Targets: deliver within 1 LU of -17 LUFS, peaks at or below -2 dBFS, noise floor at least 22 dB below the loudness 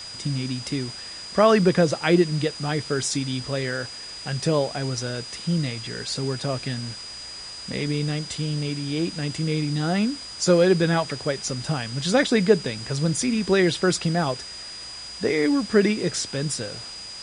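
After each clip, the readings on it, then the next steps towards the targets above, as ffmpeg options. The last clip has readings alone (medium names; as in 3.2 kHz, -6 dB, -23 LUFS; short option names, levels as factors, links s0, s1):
steady tone 4.9 kHz; tone level -36 dBFS; noise floor -38 dBFS; noise floor target -46 dBFS; loudness -24.0 LUFS; peak level -4.0 dBFS; loudness target -17.0 LUFS
-> -af "bandreject=f=4900:w=30"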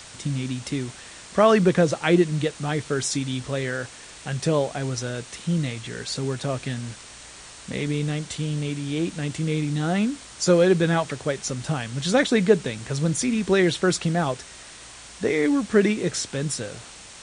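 steady tone not found; noise floor -44 dBFS; noise floor target -46 dBFS
-> -af "afftdn=nr=6:nf=-44"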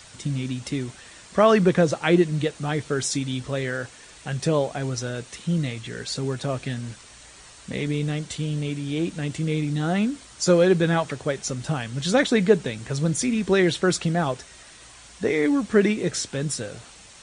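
noise floor -47 dBFS; loudness -24.0 LUFS; peak level -4.5 dBFS; loudness target -17.0 LUFS
-> -af "volume=2.24,alimiter=limit=0.794:level=0:latency=1"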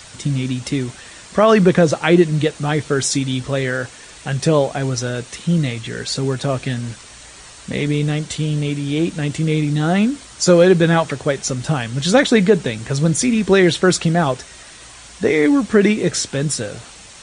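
loudness -17.5 LUFS; peak level -2.0 dBFS; noise floor -40 dBFS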